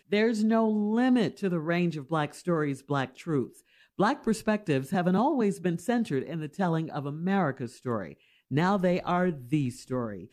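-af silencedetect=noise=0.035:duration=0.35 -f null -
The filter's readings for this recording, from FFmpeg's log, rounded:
silence_start: 3.43
silence_end: 4.00 | silence_duration: 0.56
silence_start: 8.04
silence_end: 8.52 | silence_duration: 0.48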